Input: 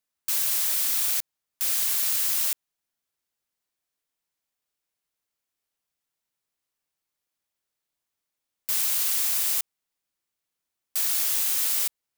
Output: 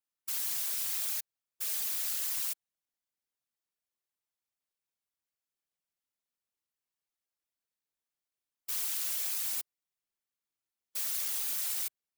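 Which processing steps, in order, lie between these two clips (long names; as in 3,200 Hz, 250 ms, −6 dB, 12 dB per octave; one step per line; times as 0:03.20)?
gate on every frequency bin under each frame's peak −30 dB strong
random phases in short frames
0:08.72–0:09.56: high-pass filter 130 Hz 12 dB per octave
level −9 dB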